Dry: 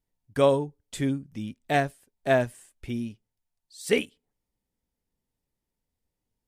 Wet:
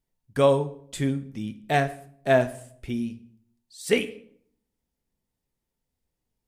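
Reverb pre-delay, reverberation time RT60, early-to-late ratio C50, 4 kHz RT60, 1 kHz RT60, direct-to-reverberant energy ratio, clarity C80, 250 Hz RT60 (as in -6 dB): 3 ms, 0.60 s, 15.5 dB, 0.45 s, 0.55 s, 10.0 dB, 18.5 dB, 0.75 s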